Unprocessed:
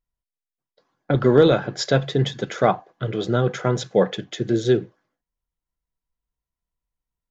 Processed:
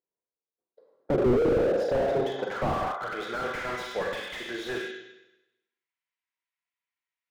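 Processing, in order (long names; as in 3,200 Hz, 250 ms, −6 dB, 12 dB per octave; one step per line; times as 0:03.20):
high-pass filter 270 Hz 6 dB per octave
four-comb reverb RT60 0.94 s, combs from 33 ms, DRR 1.5 dB
band-pass filter sweep 430 Hz → 2,200 Hz, 0:01.58–0:03.65
slew-rate limiting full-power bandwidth 15 Hz
level +8 dB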